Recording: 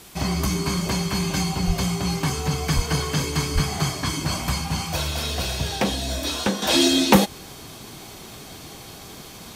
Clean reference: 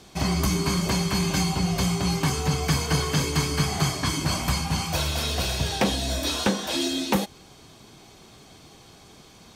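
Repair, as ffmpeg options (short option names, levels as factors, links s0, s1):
-filter_complex "[0:a]asplit=3[s0][s1][s2];[s0]afade=t=out:st=1.66:d=0.02[s3];[s1]highpass=f=140:w=0.5412,highpass=f=140:w=1.3066,afade=t=in:st=1.66:d=0.02,afade=t=out:st=1.78:d=0.02[s4];[s2]afade=t=in:st=1.78:d=0.02[s5];[s3][s4][s5]amix=inputs=3:normalize=0,asplit=3[s6][s7][s8];[s6]afade=t=out:st=2.75:d=0.02[s9];[s7]highpass=f=140:w=0.5412,highpass=f=140:w=1.3066,afade=t=in:st=2.75:d=0.02,afade=t=out:st=2.87:d=0.02[s10];[s8]afade=t=in:st=2.87:d=0.02[s11];[s9][s10][s11]amix=inputs=3:normalize=0,asplit=3[s12][s13][s14];[s12]afade=t=out:st=3.54:d=0.02[s15];[s13]highpass=f=140:w=0.5412,highpass=f=140:w=1.3066,afade=t=in:st=3.54:d=0.02,afade=t=out:st=3.66:d=0.02[s16];[s14]afade=t=in:st=3.66:d=0.02[s17];[s15][s16][s17]amix=inputs=3:normalize=0,afwtdn=0.005,asetnsamples=n=441:p=0,asendcmd='6.62 volume volume -8.5dB',volume=1"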